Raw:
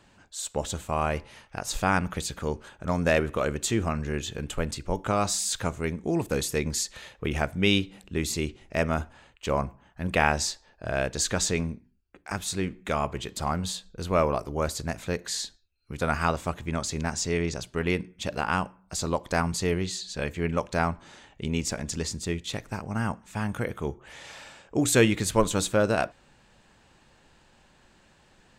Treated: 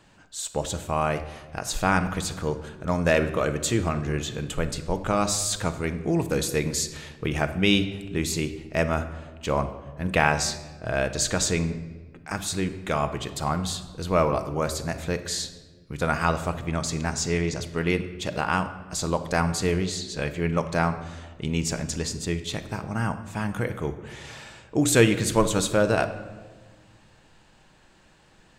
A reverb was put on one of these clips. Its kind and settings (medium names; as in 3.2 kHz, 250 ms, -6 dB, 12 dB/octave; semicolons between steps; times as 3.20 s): simulated room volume 1200 m³, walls mixed, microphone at 0.58 m; trim +1.5 dB